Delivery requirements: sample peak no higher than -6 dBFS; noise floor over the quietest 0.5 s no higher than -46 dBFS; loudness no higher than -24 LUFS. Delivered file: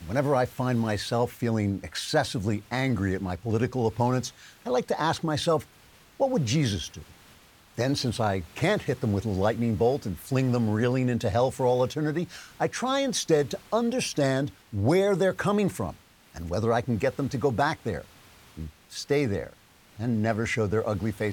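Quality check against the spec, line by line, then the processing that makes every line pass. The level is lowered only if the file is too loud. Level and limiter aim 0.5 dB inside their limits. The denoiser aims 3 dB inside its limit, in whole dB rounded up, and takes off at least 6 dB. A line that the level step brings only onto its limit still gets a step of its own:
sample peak -10.5 dBFS: OK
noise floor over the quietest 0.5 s -55 dBFS: OK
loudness -27.0 LUFS: OK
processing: none

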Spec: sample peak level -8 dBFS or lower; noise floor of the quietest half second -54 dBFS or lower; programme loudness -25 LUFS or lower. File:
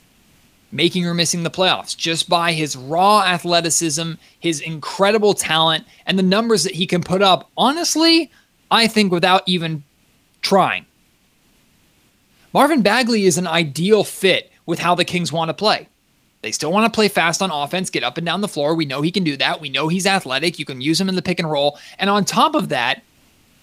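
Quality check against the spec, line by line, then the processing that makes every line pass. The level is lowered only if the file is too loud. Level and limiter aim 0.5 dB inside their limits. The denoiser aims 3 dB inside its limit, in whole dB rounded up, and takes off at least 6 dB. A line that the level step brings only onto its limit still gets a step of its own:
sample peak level -1.5 dBFS: fail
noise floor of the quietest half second -60 dBFS: OK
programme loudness -17.5 LUFS: fail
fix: gain -8 dB

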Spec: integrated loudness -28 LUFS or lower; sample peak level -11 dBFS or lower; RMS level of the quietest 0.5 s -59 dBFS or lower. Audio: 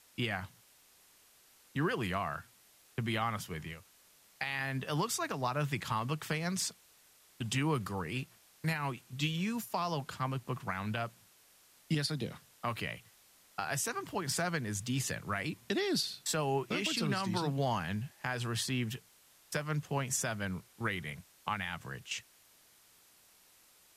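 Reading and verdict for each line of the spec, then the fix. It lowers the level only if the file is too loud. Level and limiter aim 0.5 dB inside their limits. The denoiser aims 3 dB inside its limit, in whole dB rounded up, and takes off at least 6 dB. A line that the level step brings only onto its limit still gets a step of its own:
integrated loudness -35.5 LUFS: OK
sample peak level -17.5 dBFS: OK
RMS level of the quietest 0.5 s -64 dBFS: OK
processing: none

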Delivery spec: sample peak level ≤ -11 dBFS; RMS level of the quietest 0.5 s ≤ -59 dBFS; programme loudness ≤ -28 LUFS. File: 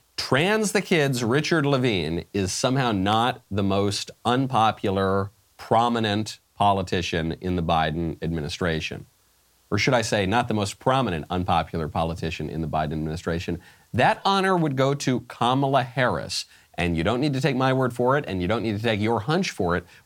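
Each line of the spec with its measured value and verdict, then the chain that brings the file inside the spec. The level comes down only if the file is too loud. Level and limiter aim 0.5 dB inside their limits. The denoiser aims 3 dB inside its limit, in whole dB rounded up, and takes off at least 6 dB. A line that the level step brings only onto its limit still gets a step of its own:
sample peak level -6.5 dBFS: fail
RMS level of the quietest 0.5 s -62 dBFS: OK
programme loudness -23.5 LUFS: fail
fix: gain -5 dB

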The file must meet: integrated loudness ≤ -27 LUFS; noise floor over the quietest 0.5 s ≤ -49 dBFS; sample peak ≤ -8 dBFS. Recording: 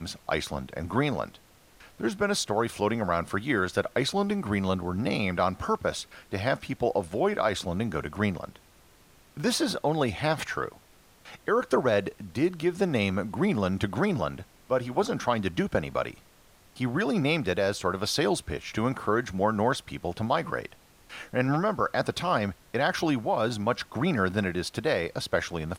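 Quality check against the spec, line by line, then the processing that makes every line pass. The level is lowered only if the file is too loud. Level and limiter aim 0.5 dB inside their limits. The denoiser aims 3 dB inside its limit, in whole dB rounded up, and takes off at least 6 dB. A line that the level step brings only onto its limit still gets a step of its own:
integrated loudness -28.5 LUFS: OK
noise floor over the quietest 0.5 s -57 dBFS: OK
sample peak -11.0 dBFS: OK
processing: none

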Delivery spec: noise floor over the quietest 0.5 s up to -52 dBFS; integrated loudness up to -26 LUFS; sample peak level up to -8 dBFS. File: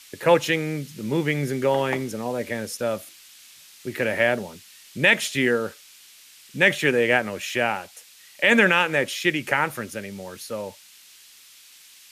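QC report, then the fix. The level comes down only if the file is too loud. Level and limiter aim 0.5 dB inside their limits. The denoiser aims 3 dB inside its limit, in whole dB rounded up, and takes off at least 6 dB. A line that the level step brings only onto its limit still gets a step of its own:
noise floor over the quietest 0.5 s -50 dBFS: fail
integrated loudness -22.5 LUFS: fail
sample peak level -5.0 dBFS: fail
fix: gain -4 dB

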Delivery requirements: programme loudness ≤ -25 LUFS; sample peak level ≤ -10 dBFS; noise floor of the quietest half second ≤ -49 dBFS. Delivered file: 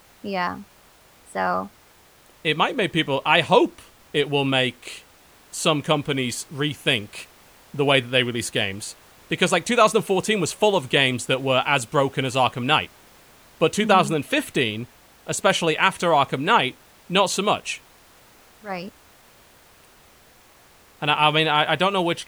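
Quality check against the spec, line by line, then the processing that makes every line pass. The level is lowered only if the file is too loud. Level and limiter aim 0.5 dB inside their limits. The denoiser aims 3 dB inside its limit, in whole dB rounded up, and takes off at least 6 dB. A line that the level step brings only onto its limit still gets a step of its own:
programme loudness -21.0 LUFS: fail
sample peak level -2.5 dBFS: fail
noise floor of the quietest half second -53 dBFS: OK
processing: gain -4.5 dB; limiter -10.5 dBFS

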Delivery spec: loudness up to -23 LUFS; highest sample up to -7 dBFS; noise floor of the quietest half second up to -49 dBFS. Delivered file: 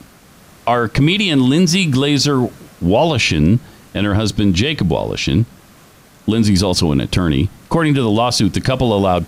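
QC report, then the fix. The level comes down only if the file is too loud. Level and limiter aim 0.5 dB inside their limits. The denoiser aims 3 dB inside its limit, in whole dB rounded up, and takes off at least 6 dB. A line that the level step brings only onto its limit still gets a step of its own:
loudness -15.5 LUFS: fail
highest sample -4.0 dBFS: fail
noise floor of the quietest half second -45 dBFS: fail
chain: gain -8 dB

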